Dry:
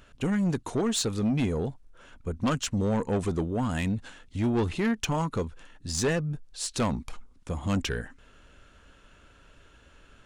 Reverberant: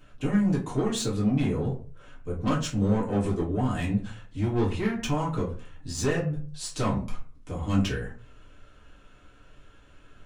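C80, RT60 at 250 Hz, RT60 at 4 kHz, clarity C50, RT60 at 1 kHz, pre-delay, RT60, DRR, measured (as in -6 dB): 14.0 dB, 0.40 s, 0.20 s, 9.0 dB, 0.35 s, 4 ms, 0.40 s, -6.0 dB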